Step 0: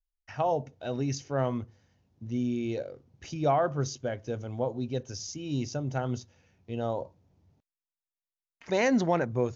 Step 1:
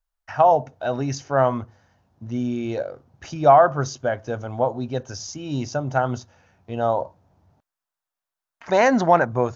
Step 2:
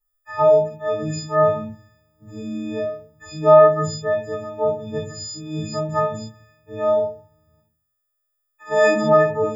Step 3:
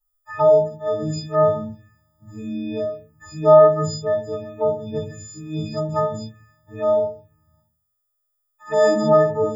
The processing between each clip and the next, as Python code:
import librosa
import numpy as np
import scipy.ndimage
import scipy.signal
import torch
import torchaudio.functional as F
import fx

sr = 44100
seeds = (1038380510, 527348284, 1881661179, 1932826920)

y1 = fx.band_shelf(x, sr, hz=1000.0, db=9.0, octaves=1.7)
y1 = y1 * 10.0 ** (4.5 / 20.0)
y2 = fx.freq_snap(y1, sr, grid_st=6)
y2 = fx.room_shoebox(y2, sr, seeds[0], volume_m3=180.0, walls='furnished', distance_m=4.1)
y2 = y2 * 10.0 ** (-11.5 / 20.0)
y3 = fx.env_phaser(y2, sr, low_hz=370.0, high_hz=2400.0, full_db=-21.0)
y3 = y3 * 10.0 ** (1.0 / 20.0)